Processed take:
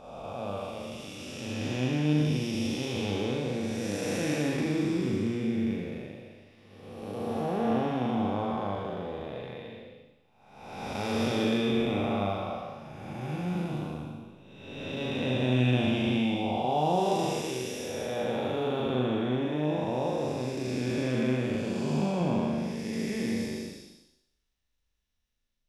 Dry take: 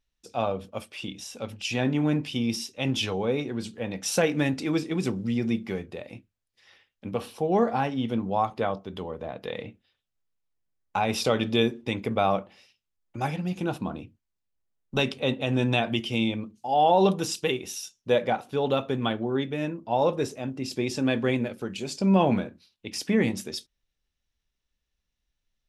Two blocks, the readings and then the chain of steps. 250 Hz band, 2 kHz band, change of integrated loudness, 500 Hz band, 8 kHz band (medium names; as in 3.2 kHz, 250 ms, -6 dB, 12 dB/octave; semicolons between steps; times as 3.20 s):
-1.0 dB, -4.0 dB, -3.0 dB, -3.5 dB, -6.0 dB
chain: spectral blur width 601 ms; flutter echo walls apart 6.8 m, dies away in 0.53 s